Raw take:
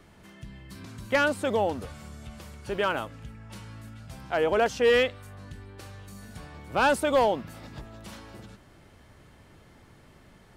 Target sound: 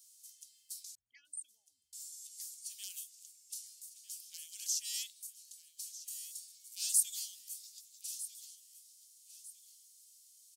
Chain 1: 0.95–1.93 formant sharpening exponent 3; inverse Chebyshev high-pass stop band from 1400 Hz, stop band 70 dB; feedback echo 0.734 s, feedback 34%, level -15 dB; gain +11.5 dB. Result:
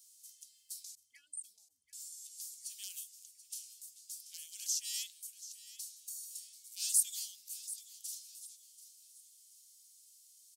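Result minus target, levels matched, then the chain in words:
echo 0.516 s early
0.95–1.93 formant sharpening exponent 3; inverse Chebyshev high-pass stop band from 1400 Hz, stop band 70 dB; feedback echo 1.25 s, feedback 34%, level -15 dB; gain +11.5 dB

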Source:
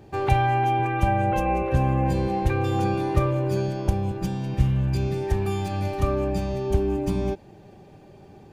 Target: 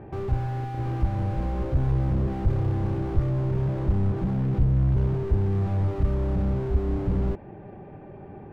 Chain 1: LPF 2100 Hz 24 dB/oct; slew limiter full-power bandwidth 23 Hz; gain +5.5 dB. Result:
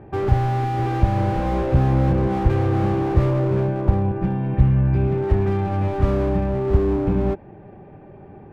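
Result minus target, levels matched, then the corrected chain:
slew limiter: distortion -11 dB
LPF 2100 Hz 24 dB/oct; slew limiter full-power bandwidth 6.5 Hz; gain +5.5 dB

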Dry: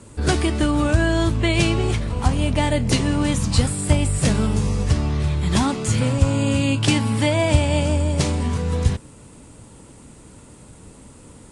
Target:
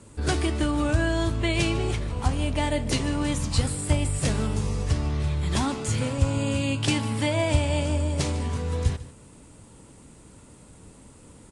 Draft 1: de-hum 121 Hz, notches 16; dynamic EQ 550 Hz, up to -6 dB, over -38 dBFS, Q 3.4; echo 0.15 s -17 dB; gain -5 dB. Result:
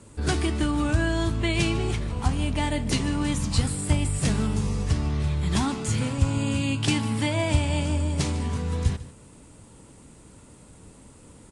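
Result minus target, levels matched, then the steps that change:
500 Hz band -3.0 dB
change: dynamic EQ 190 Hz, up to -6 dB, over -38 dBFS, Q 3.4

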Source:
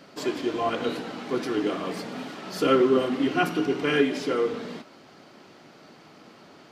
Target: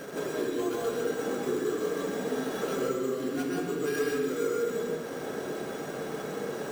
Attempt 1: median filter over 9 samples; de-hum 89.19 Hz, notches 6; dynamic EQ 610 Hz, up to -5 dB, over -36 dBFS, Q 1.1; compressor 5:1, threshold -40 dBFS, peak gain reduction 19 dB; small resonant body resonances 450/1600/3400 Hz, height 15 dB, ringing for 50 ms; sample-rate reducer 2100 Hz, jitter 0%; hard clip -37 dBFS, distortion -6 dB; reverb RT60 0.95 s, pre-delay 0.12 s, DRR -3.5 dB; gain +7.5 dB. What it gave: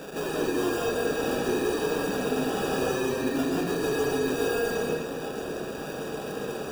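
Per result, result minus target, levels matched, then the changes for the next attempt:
compressor: peak gain reduction -6.5 dB; sample-rate reducer: distortion +9 dB
change: compressor 5:1, threshold -48 dBFS, peak gain reduction 25.5 dB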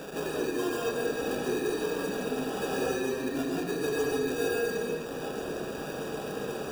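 sample-rate reducer: distortion +9 dB
change: sample-rate reducer 7300 Hz, jitter 0%

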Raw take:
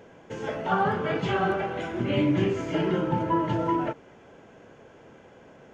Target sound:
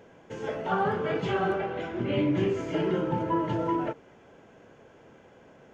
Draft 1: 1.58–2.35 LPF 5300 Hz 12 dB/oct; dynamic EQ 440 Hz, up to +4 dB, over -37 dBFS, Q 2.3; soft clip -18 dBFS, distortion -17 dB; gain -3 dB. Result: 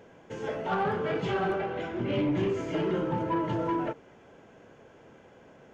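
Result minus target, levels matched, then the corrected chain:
soft clip: distortion +15 dB
1.58–2.35 LPF 5300 Hz 12 dB/oct; dynamic EQ 440 Hz, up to +4 dB, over -37 dBFS, Q 2.3; soft clip -9 dBFS, distortion -32 dB; gain -3 dB

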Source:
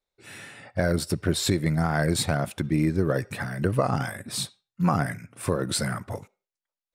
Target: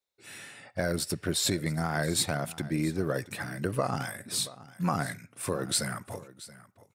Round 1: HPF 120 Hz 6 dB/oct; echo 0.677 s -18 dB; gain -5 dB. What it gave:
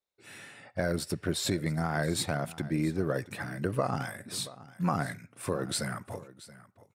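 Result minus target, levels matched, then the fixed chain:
8000 Hz band -4.0 dB
HPF 120 Hz 6 dB/oct; high shelf 3100 Hz +6.5 dB; echo 0.677 s -18 dB; gain -5 dB

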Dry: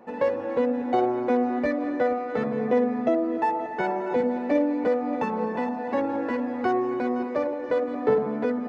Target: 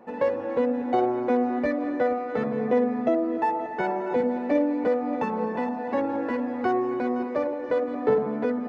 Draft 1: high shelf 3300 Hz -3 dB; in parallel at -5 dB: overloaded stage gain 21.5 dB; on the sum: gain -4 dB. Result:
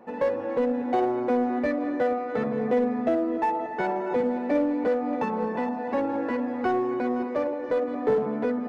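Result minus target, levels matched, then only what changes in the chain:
overloaded stage: distortion +28 dB
change: overloaded stage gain 12 dB

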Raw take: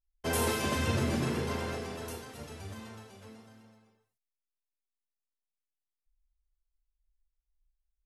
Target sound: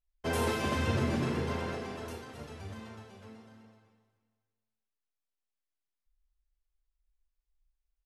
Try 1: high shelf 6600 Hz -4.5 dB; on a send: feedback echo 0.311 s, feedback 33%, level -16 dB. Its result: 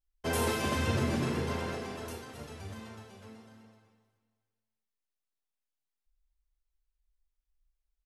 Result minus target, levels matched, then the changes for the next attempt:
8000 Hz band +4.0 dB
change: high shelf 6600 Hz -12 dB

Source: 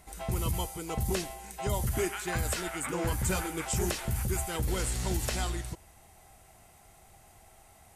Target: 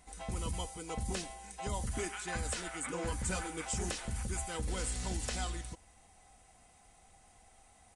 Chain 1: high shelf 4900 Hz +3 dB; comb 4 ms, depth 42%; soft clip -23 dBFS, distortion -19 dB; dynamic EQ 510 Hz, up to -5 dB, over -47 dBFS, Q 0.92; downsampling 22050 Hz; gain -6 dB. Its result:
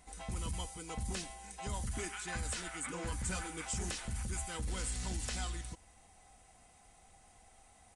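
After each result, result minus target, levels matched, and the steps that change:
soft clip: distortion +13 dB; 500 Hz band -3.5 dB
change: soft clip -15.5 dBFS, distortion -32 dB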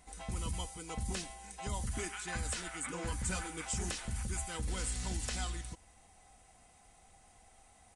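500 Hz band -3.5 dB
remove: dynamic EQ 510 Hz, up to -5 dB, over -47 dBFS, Q 0.92

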